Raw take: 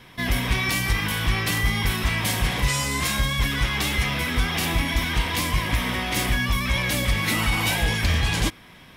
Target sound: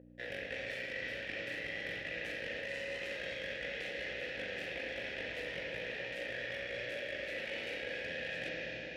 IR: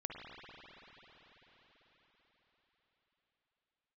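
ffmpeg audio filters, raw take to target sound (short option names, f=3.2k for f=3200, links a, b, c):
-filter_complex "[0:a]aeval=exprs='0.299*(cos(1*acos(clip(val(0)/0.299,-1,1)))-cos(1*PI/2))+0.0944*(cos(4*acos(clip(val(0)/0.299,-1,1)))-cos(4*PI/2))+0.0422*(cos(7*acos(clip(val(0)/0.299,-1,1)))-cos(7*PI/2))':c=same[a];[1:a]atrim=start_sample=2205,asetrate=70560,aresample=44100[b];[a][b]afir=irnorm=-1:irlink=0,acrossover=split=690|5600[c][d][e];[c]acompressor=mode=upward:threshold=-37dB:ratio=2.5[f];[f][d][e]amix=inputs=3:normalize=0,aeval=exprs='val(0)+0.0224*(sin(2*PI*60*n/s)+sin(2*PI*2*60*n/s)/2+sin(2*PI*3*60*n/s)/3+sin(2*PI*4*60*n/s)/4+sin(2*PI*5*60*n/s)/5)':c=same,asplit=3[g][h][i];[g]bandpass=f=530:t=q:w=8,volume=0dB[j];[h]bandpass=f=1.84k:t=q:w=8,volume=-6dB[k];[i]bandpass=f=2.48k:t=q:w=8,volume=-9dB[l];[j][k][l]amix=inputs=3:normalize=0,areverse,acompressor=threshold=-42dB:ratio=6,areverse,volume=5dB"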